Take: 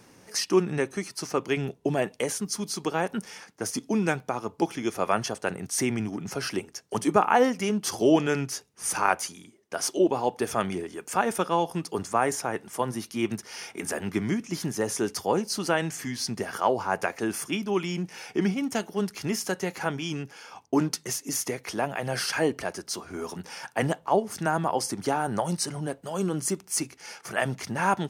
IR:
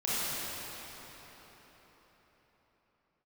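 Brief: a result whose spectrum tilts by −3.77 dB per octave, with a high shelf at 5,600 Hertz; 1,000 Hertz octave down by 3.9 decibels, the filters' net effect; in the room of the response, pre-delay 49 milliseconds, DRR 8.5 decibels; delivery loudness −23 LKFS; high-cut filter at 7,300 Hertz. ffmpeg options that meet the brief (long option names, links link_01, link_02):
-filter_complex "[0:a]lowpass=7300,equalizer=frequency=1000:width_type=o:gain=-5.5,highshelf=frequency=5600:gain=8.5,asplit=2[link_01][link_02];[1:a]atrim=start_sample=2205,adelay=49[link_03];[link_02][link_03]afir=irnorm=-1:irlink=0,volume=-18.5dB[link_04];[link_01][link_04]amix=inputs=2:normalize=0,volume=5dB"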